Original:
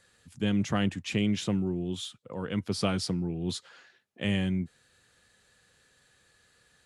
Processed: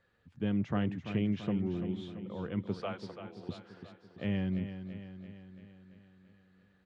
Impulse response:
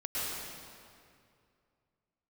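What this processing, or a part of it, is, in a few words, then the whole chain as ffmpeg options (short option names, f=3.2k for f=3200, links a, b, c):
phone in a pocket: -filter_complex "[0:a]asettb=1/sr,asplit=3[a][b][c];[a]atrim=end=2.794[d];[b]atrim=start=2.79:end=3.49,asetpts=PTS-STARTPTS,afade=t=in:d=0.004:c=qsin,afade=t=out:st=0.696:d=0.004:c=qsin,highpass=f=500:w=0.5412,highpass=f=500:w=1.3066[e];[c]atrim=start=3.486[f];[d][e]acrossfade=d=0.004:c1=hsin:c2=qsin[g];[g][f]acrossfade=d=0.004:c1=qsin:c2=hsin,lowpass=3.5k,highshelf=f=2.4k:g=-11.5,aecho=1:1:337|674|1011|1348|1685|2022|2359:0.316|0.187|0.11|0.0649|0.0383|0.0226|0.0133,volume=-4dB"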